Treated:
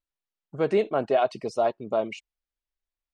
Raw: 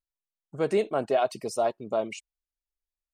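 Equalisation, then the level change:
low-pass filter 4,200 Hz 12 dB per octave
+2.0 dB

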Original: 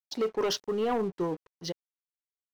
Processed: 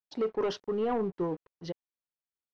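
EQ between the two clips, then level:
head-to-tape spacing loss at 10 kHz 24 dB
0.0 dB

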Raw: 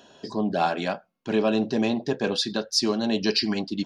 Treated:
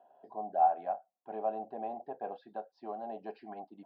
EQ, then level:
resonant band-pass 740 Hz, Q 8.6
high-frequency loss of the air 420 metres
+3.0 dB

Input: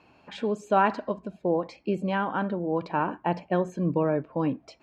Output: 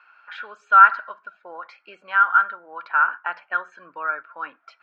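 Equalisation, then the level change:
high-pass with resonance 1,400 Hz, resonance Q 14
high-frequency loss of the air 180 metres
+1.0 dB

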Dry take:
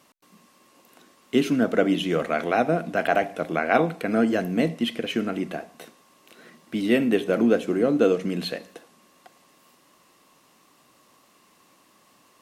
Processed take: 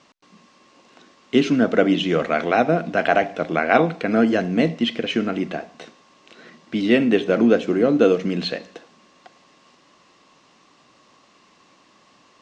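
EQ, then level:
low-pass filter 7,200 Hz 24 dB per octave
high-frequency loss of the air 110 metres
high-shelf EQ 4,400 Hz +9.5 dB
+4.0 dB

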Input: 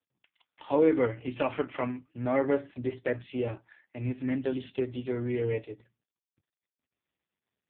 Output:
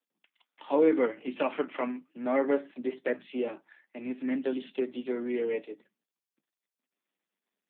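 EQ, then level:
Butterworth high-pass 180 Hz 48 dB per octave
0.0 dB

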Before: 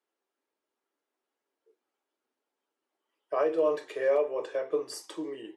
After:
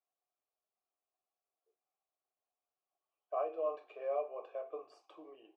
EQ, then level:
formant filter a
high-frequency loss of the air 54 metres
low-shelf EQ 160 Hz +4 dB
0.0 dB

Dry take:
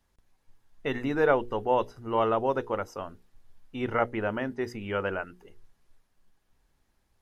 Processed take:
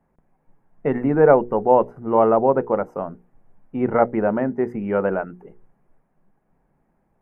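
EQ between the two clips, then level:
drawn EQ curve 100 Hz 0 dB, 160 Hz +15 dB, 300 Hz +9 dB, 760 Hz +11 dB, 1,100 Hz +5 dB, 2,300 Hz −2 dB, 4,000 Hz −26 dB, 9,000 Hz −11 dB
0.0 dB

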